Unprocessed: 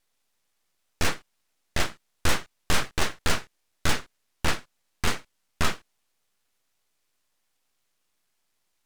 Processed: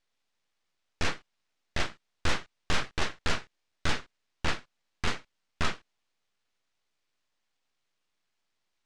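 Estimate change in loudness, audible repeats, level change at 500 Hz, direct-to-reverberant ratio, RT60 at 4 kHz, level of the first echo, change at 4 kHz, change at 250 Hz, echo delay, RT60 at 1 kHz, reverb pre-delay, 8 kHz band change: −4.5 dB, no echo audible, −4.5 dB, no reverb audible, no reverb audible, no echo audible, −4.0 dB, −4.5 dB, no echo audible, no reverb audible, no reverb audible, −9.0 dB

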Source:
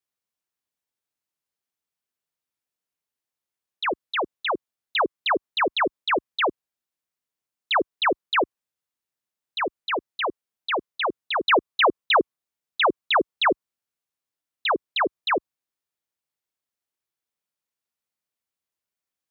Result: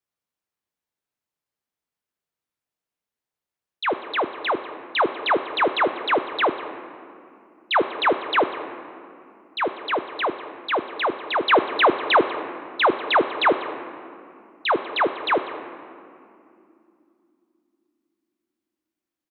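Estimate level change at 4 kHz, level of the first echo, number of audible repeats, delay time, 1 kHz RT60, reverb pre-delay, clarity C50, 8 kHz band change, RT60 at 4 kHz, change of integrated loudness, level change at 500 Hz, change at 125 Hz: −0.5 dB, −18.5 dB, 1, 194 ms, 2.5 s, 7 ms, 10.5 dB, can't be measured, 1.3 s, +2.0 dB, +3.5 dB, can't be measured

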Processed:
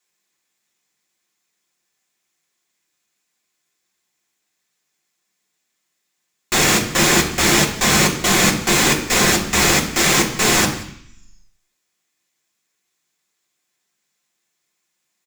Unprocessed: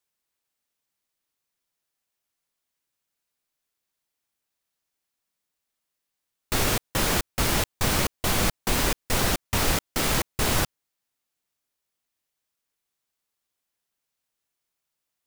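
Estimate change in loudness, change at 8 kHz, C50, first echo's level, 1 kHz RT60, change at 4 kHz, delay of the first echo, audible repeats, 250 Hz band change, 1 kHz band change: +10.0 dB, +12.0 dB, 9.0 dB, −19.0 dB, 0.70 s, +10.5 dB, 180 ms, 1, +11.0 dB, +9.0 dB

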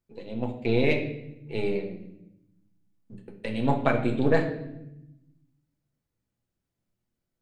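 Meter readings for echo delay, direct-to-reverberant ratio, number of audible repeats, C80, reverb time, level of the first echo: no echo audible, 1.5 dB, no echo audible, 11.5 dB, 0.85 s, no echo audible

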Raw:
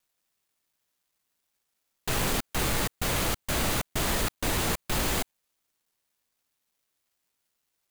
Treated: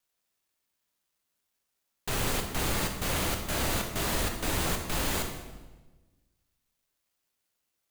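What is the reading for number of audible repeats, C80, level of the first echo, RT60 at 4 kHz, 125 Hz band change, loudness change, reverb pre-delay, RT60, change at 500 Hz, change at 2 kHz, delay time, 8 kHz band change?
no echo audible, 8.0 dB, no echo audible, 1.0 s, −1.5 dB, −2.0 dB, 8 ms, 1.2 s, −1.5 dB, −2.0 dB, no echo audible, −2.0 dB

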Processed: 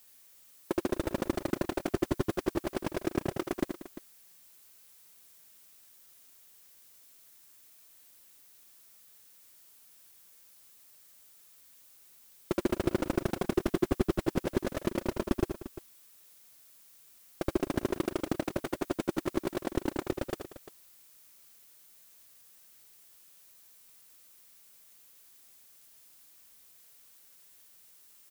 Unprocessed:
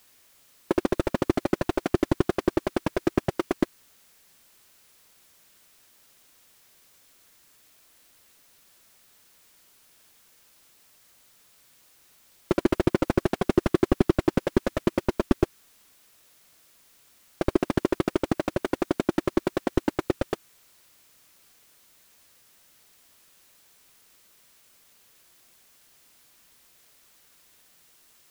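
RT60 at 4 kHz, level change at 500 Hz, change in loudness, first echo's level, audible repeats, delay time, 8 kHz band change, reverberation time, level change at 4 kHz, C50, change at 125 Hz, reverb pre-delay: no reverb audible, −6.5 dB, −6.5 dB, −7.5 dB, 3, 80 ms, −1.0 dB, no reverb audible, −4.5 dB, no reverb audible, −6.5 dB, no reverb audible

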